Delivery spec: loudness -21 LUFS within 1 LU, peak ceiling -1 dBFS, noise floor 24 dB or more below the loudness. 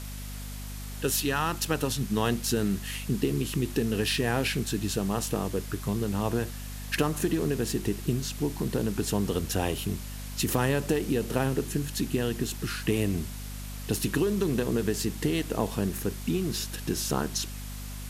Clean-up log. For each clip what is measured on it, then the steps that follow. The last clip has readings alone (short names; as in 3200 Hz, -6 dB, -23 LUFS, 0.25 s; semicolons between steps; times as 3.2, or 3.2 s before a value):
hum 50 Hz; harmonics up to 250 Hz; hum level -36 dBFS; noise floor -38 dBFS; noise floor target -53 dBFS; loudness -29.0 LUFS; peak -11.0 dBFS; loudness target -21.0 LUFS
-> notches 50/100/150/200/250 Hz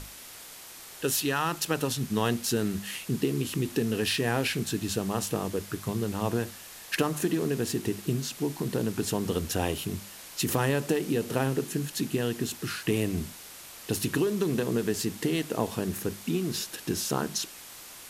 hum none; noise floor -46 dBFS; noise floor target -54 dBFS
-> denoiser 8 dB, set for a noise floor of -46 dBFS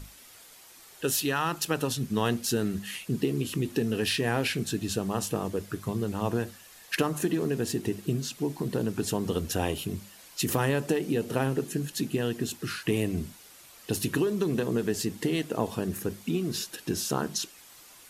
noise floor -52 dBFS; noise floor target -54 dBFS
-> denoiser 6 dB, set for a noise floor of -52 dBFS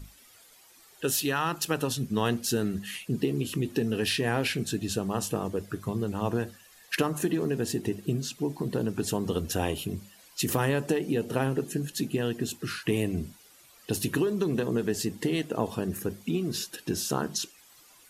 noise floor -56 dBFS; loudness -30.0 LUFS; peak -11.5 dBFS; loudness target -21.0 LUFS
-> gain +9 dB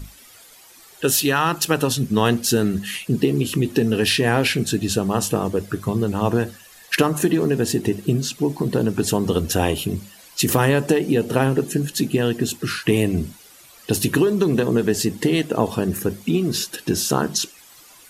loudness -21.0 LUFS; peak -2.5 dBFS; noise floor -47 dBFS